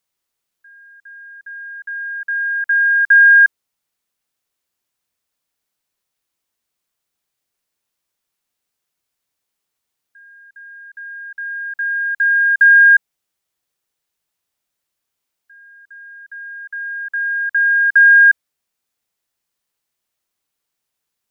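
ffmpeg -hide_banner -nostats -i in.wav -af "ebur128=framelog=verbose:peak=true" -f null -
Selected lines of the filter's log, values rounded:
Integrated loudness:
  I:         -11.4 LUFS
  Threshold: -24.5 LUFS
Loudness range:
  LRA:        13.6 LU
  Threshold: -36.3 LUFS
  LRA low:   -27.8 LUFS
  LRA high:  -14.2 LUFS
True peak:
  Peak:       -4.8 dBFS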